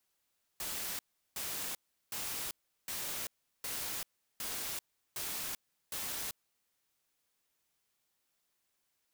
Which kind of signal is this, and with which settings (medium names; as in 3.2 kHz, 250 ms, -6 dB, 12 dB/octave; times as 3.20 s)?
noise bursts white, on 0.39 s, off 0.37 s, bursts 8, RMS -39 dBFS